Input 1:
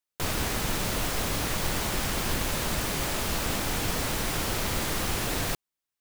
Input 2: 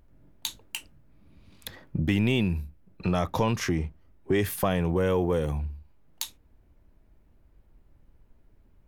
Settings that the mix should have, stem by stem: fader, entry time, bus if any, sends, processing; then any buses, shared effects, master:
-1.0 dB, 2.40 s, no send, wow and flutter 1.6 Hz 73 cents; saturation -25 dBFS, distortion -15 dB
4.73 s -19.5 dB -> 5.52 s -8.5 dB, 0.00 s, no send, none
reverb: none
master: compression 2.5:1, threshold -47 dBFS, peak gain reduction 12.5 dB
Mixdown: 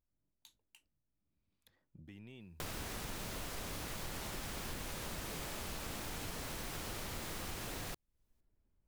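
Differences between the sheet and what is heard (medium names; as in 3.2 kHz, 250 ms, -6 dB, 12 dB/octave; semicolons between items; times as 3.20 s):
stem 1: missing saturation -25 dBFS, distortion -15 dB; stem 2 -19.5 dB -> -29.0 dB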